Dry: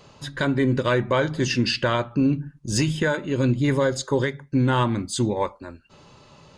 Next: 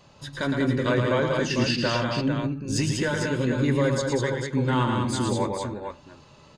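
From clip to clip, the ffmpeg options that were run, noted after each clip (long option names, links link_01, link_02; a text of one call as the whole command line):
ffmpeg -i in.wav -filter_complex "[0:a]flanger=delay=1.1:depth=6.8:regen=-66:speed=0.5:shape=sinusoidal,asplit=2[link_01][link_02];[link_02]aecho=0:1:112|195|280|449:0.531|0.596|0.141|0.473[link_03];[link_01][link_03]amix=inputs=2:normalize=0" out.wav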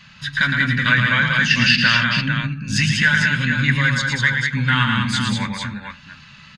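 ffmpeg -i in.wav -af "firequalizer=gain_entry='entry(110,0);entry(200,7);entry(340,-22);entry(1600,14);entry(7800,-3)':delay=0.05:min_phase=1,volume=4dB" out.wav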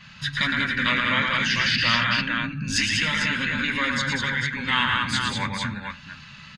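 ffmpeg -i in.wav -af "afftfilt=real='re*lt(hypot(re,im),0.501)':imag='im*lt(hypot(re,im),0.501)':win_size=1024:overlap=0.75,adynamicequalizer=threshold=0.0251:dfrequency=3300:dqfactor=0.7:tfrequency=3300:tqfactor=0.7:attack=5:release=100:ratio=0.375:range=2.5:mode=cutabove:tftype=highshelf" out.wav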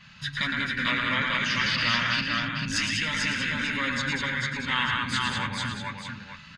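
ffmpeg -i in.wav -af "aecho=1:1:442:0.531,volume=-4.5dB" out.wav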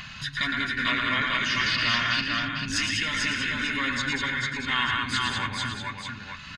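ffmpeg -i in.wav -af "aecho=1:1:2.8:0.46,acompressor=mode=upward:threshold=-31dB:ratio=2.5" out.wav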